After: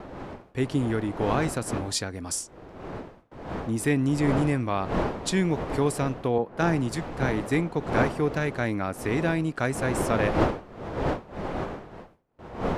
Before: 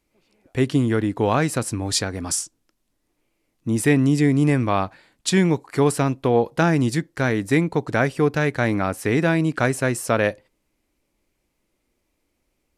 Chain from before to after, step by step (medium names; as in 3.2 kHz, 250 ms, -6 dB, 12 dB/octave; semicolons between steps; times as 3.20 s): wind noise 640 Hz -26 dBFS; gate with hold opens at -33 dBFS; 6.38–7.33 s: three bands expanded up and down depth 70%; trim -6.5 dB